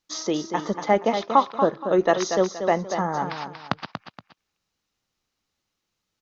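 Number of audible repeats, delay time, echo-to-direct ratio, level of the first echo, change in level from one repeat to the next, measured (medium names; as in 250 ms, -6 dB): 2, 236 ms, -7.5 dB, -8.0 dB, -10.5 dB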